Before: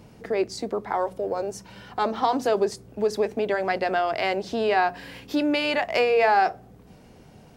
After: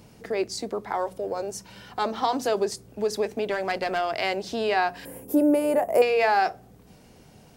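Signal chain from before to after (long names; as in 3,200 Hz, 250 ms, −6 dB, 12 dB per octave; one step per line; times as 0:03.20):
high-shelf EQ 3,700 Hz +8 dB
0:03.46–0:04.08: asymmetric clip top −20.5 dBFS
0:05.05–0:06.02: drawn EQ curve 110 Hz 0 dB, 520 Hz +9 dB, 4,200 Hz −24 dB, 10,000 Hz +11 dB
level −2.5 dB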